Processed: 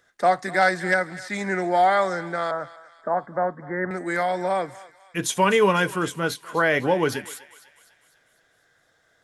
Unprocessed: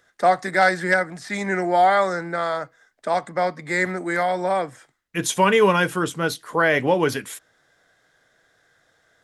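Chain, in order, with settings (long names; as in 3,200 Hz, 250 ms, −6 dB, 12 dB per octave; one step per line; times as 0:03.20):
0:02.51–0:03.91: Butterworth low-pass 1,800 Hz 72 dB per octave
on a send: feedback echo with a high-pass in the loop 251 ms, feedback 54%, high-pass 1,100 Hz, level −15.5 dB
on the sum: level −2 dB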